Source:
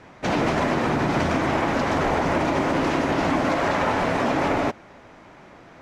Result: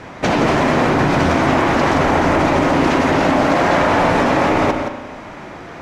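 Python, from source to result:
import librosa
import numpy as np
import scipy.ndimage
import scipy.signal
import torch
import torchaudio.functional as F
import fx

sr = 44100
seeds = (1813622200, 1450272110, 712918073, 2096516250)

p1 = fx.over_compress(x, sr, threshold_db=-26.0, ratio=-0.5)
p2 = x + (p1 * librosa.db_to_amplitude(0.5))
p3 = p2 + 10.0 ** (-7.5 / 20.0) * np.pad(p2, (int(172 * sr / 1000.0), 0))[:len(p2)]
p4 = fx.rev_spring(p3, sr, rt60_s=1.3, pass_ms=(35,), chirp_ms=60, drr_db=8.5)
y = p4 * librosa.db_to_amplitude(2.5)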